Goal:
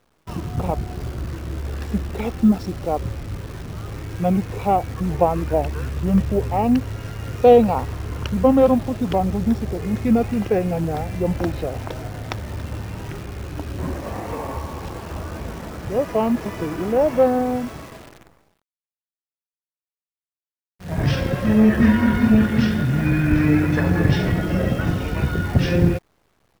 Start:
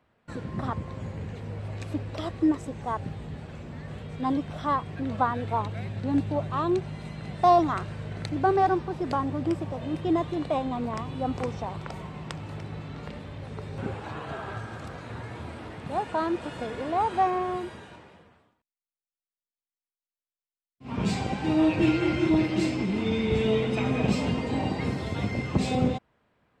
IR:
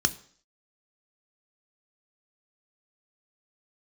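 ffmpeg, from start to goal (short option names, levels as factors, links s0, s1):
-af "asetrate=30296,aresample=44100,atempo=1.45565,acrusher=bits=9:dc=4:mix=0:aa=0.000001,volume=2.51"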